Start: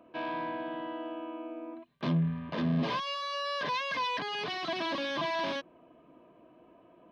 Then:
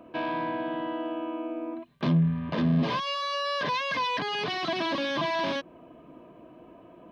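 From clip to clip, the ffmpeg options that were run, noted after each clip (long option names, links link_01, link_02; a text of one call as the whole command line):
ffmpeg -i in.wav -filter_complex "[0:a]lowshelf=frequency=240:gain=5.5,asplit=2[link_01][link_02];[link_02]acompressor=threshold=-37dB:ratio=6,volume=1dB[link_03];[link_01][link_03]amix=inputs=2:normalize=0" out.wav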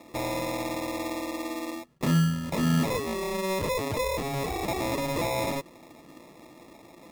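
ffmpeg -i in.wav -af "acrusher=samples=29:mix=1:aa=0.000001" out.wav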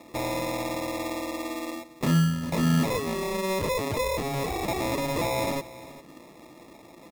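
ffmpeg -i in.wav -af "aecho=1:1:400:0.133,volume=1dB" out.wav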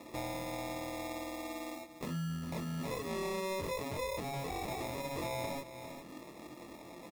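ffmpeg -i in.wav -filter_complex "[0:a]alimiter=limit=-23dB:level=0:latency=1:release=13,acompressor=threshold=-43dB:ratio=2,asplit=2[link_01][link_02];[link_02]adelay=23,volume=-3dB[link_03];[link_01][link_03]amix=inputs=2:normalize=0,volume=-2.5dB" out.wav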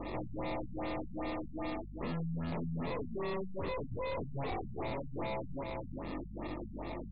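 ffmpeg -i in.wav -af "aeval=exprs='val(0)+0.00178*(sin(2*PI*50*n/s)+sin(2*PI*2*50*n/s)/2+sin(2*PI*3*50*n/s)/3+sin(2*PI*4*50*n/s)/4+sin(2*PI*5*50*n/s)/5)':channel_layout=same,aeval=exprs='(tanh(251*val(0)+0.45)-tanh(0.45))/251':channel_layout=same,afftfilt=real='re*lt(b*sr/1024,210*pow(5000/210,0.5+0.5*sin(2*PI*2.5*pts/sr)))':imag='im*lt(b*sr/1024,210*pow(5000/210,0.5+0.5*sin(2*PI*2.5*pts/sr)))':win_size=1024:overlap=0.75,volume=12.5dB" out.wav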